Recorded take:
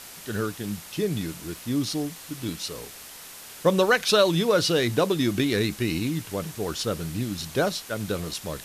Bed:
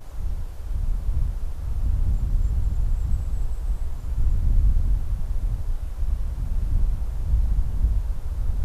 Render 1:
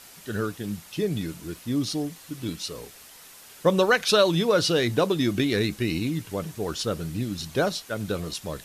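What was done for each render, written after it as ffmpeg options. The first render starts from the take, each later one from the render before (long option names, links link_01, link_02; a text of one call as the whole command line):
ffmpeg -i in.wav -af "afftdn=noise_reduction=6:noise_floor=-43" out.wav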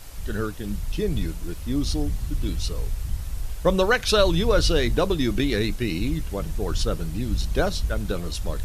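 ffmpeg -i in.wav -i bed.wav -filter_complex "[1:a]volume=-4.5dB[link_01];[0:a][link_01]amix=inputs=2:normalize=0" out.wav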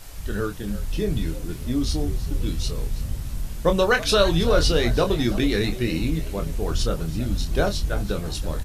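ffmpeg -i in.wav -filter_complex "[0:a]asplit=2[link_01][link_02];[link_02]adelay=25,volume=-7dB[link_03];[link_01][link_03]amix=inputs=2:normalize=0,asplit=4[link_04][link_05][link_06][link_07];[link_05]adelay=328,afreqshift=96,volume=-16.5dB[link_08];[link_06]adelay=656,afreqshift=192,volume=-25.6dB[link_09];[link_07]adelay=984,afreqshift=288,volume=-34.7dB[link_10];[link_04][link_08][link_09][link_10]amix=inputs=4:normalize=0" out.wav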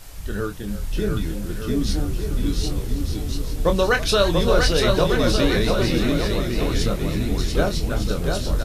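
ffmpeg -i in.wav -af "aecho=1:1:690|1208|1596|1887|2105:0.631|0.398|0.251|0.158|0.1" out.wav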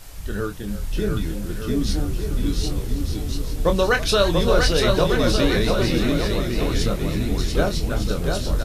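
ffmpeg -i in.wav -af anull out.wav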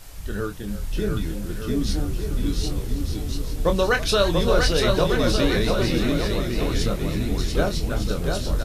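ffmpeg -i in.wav -af "volume=-1.5dB" out.wav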